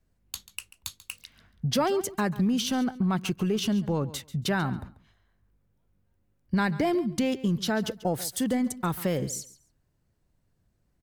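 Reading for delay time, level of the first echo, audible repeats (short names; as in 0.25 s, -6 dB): 0.139 s, -17.0 dB, 2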